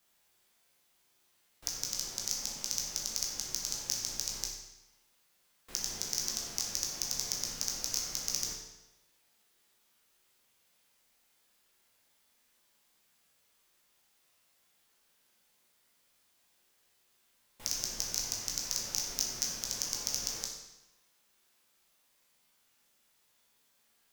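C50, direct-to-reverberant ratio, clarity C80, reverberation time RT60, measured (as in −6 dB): 3.5 dB, −2.0 dB, 5.0 dB, 1.0 s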